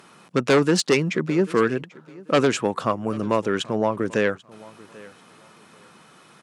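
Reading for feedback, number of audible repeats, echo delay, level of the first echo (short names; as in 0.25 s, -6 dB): 24%, 2, 0.79 s, -22.0 dB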